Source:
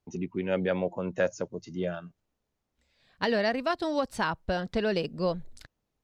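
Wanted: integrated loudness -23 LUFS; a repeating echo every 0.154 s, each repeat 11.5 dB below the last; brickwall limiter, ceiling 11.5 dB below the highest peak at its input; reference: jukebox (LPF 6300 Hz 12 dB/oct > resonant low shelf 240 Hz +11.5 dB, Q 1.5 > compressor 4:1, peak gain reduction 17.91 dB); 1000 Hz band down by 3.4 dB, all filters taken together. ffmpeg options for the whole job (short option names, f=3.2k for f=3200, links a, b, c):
-af "equalizer=f=1k:t=o:g=-3.5,alimiter=level_in=1.5dB:limit=-24dB:level=0:latency=1,volume=-1.5dB,lowpass=6.3k,lowshelf=f=240:t=q:w=1.5:g=11.5,aecho=1:1:154|308|462:0.266|0.0718|0.0194,acompressor=threshold=-40dB:ratio=4,volume=19dB"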